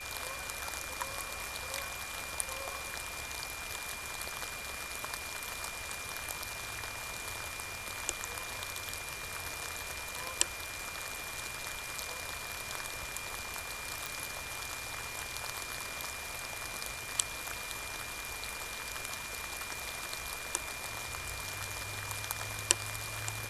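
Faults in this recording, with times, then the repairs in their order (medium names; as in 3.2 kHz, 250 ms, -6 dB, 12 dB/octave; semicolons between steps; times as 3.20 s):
crackle 48 per s -46 dBFS
whine 2.4 kHz -44 dBFS
14.06 s: pop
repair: de-click; band-stop 2.4 kHz, Q 30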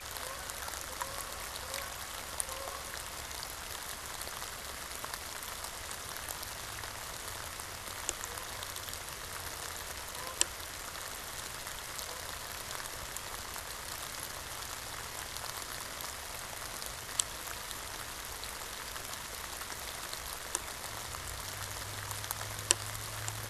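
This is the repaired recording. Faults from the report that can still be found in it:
14.06 s: pop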